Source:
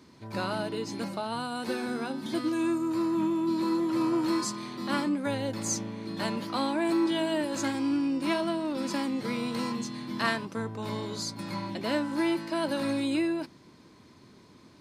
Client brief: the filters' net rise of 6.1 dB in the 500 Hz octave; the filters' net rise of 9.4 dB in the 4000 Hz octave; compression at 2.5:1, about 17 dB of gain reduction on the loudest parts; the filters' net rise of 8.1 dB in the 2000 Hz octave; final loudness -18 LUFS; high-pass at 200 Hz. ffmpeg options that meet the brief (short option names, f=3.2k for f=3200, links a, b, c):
-af "highpass=200,equalizer=f=500:t=o:g=8.5,equalizer=f=2k:t=o:g=7.5,equalizer=f=4k:t=o:g=9,acompressor=threshold=-46dB:ratio=2.5,volume=23dB"